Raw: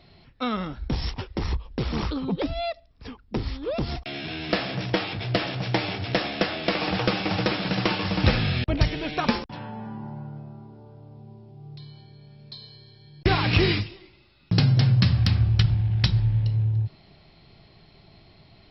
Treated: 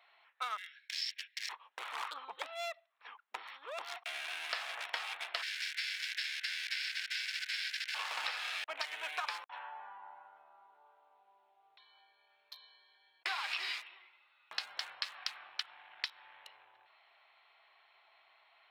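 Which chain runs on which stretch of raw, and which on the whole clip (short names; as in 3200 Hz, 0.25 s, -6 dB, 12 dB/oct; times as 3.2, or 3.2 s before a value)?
0.57–1.49 rippled Chebyshev high-pass 1600 Hz, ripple 3 dB + high shelf 2500 Hz +10.5 dB
5.41–7.94 spectral whitening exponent 0.6 + negative-ratio compressor -27 dBFS, ratio -0.5 + rippled Chebyshev high-pass 1500 Hz, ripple 3 dB
whole clip: Wiener smoothing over 9 samples; HPF 910 Hz 24 dB/oct; compressor 12:1, threshold -33 dBFS; gain -1 dB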